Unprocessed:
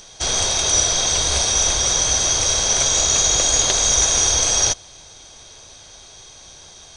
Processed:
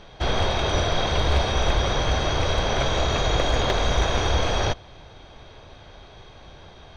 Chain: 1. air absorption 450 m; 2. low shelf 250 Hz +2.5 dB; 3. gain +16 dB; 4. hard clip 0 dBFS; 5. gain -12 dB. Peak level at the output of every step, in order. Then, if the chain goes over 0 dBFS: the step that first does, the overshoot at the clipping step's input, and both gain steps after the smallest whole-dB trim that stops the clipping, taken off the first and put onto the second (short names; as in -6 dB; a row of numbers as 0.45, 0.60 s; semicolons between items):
-10.5, -10.0, +6.0, 0.0, -12.0 dBFS; step 3, 6.0 dB; step 3 +10 dB, step 5 -6 dB